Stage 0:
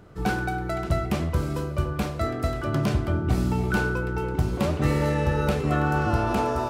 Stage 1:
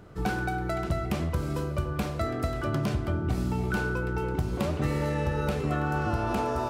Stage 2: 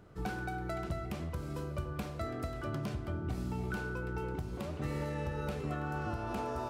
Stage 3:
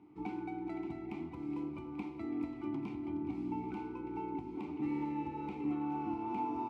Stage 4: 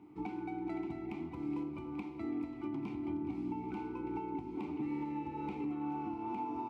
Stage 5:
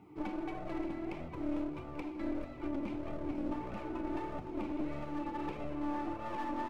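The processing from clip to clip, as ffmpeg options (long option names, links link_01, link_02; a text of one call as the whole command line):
ffmpeg -i in.wav -af "acompressor=threshold=-26dB:ratio=2.5" out.wav
ffmpeg -i in.wav -af "alimiter=limit=-18.5dB:level=0:latency=1:release=424,volume=-7.5dB" out.wav
ffmpeg -i in.wav -filter_complex "[0:a]asplit=3[link_01][link_02][link_03];[link_01]bandpass=frequency=300:width_type=q:width=8,volume=0dB[link_04];[link_02]bandpass=frequency=870:width_type=q:width=8,volume=-6dB[link_05];[link_03]bandpass=frequency=2240:width_type=q:width=8,volume=-9dB[link_06];[link_04][link_05][link_06]amix=inputs=3:normalize=0,aecho=1:1:419|838|1257|1676|2095|2514:0.251|0.146|0.0845|0.049|0.0284|0.0165,volume=10dB" out.wav
ffmpeg -i in.wav -af "alimiter=level_in=9dB:limit=-24dB:level=0:latency=1:release=402,volume=-9dB,volume=3dB" out.wav
ffmpeg -i in.wav -af "aeval=exprs='clip(val(0),-1,0.00473)':channel_layout=same,flanger=delay=1.5:depth=2.1:regen=-27:speed=1.6:shape=sinusoidal,volume=7dB" out.wav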